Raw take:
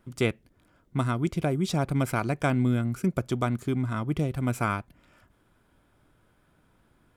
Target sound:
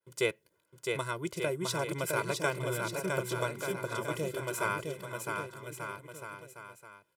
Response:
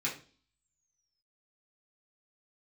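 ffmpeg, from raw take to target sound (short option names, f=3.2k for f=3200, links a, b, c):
-filter_complex "[0:a]agate=range=-33dB:threshold=-55dB:ratio=3:detection=peak,highpass=230,highshelf=f=5.3k:g=8,aecho=1:1:2:0.99,asplit=2[a][b];[b]aecho=0:1:660|1188|1610|1948|2219:0.631|0.398|0.251|0.158|0.1[c];[a][c]amix=inputs=2:normalize=0,volume=-6.5dB"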